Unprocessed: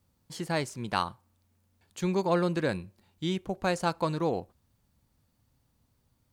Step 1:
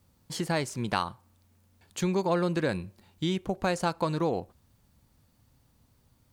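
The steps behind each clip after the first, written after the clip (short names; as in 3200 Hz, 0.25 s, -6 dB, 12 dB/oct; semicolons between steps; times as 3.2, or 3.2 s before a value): compressor 2:1, threshold -34 dBFS, peak gain reduction 7.5 dB; gain +6 dB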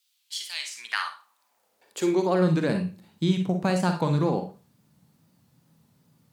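high-pass sweep 3200 Hz -> 160 Hz, 0.52–2.59; wow and flutter 110 cents; Schroeder reverb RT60 0.31 s, DRR 5 dB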